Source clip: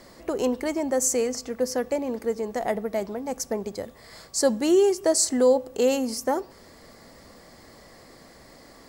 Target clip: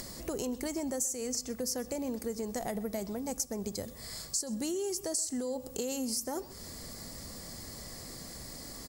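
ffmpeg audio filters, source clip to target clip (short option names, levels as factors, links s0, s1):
-filter_complex "[0:a]alimiter=limit=0.119:level=0:latency=1:release=65,bass=f=250:g=10,treble=f=4000:g=15,acompressor=threshold=0.0631:ratio=6,asplit=2[s0][s1];[s1]aecho=0:1:127:0.0944[s2];[s0][s2]amix=inputs=2:normalize=0,acompressor=mode=upward:threshold=0.0316:ratio=2.5,volume=0.447"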